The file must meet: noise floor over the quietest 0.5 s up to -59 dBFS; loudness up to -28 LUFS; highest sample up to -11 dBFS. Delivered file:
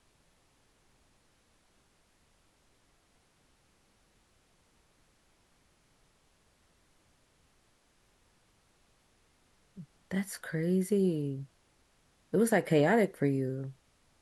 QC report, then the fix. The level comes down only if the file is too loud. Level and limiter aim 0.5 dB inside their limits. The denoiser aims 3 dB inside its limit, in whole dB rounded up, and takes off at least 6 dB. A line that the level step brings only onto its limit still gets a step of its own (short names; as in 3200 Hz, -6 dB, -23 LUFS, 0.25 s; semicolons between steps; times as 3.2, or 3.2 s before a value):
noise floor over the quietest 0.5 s -69 dBFS: OK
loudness -30.5 LUFS: OK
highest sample -13.5 dBFS: OK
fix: none